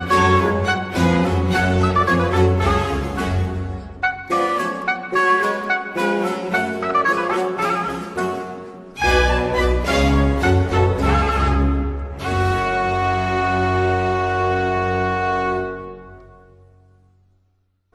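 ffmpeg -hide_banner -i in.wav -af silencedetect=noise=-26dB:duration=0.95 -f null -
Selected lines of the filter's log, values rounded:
silence_start: 15.95
silence_end: 17.95 | silence_duration: 2.00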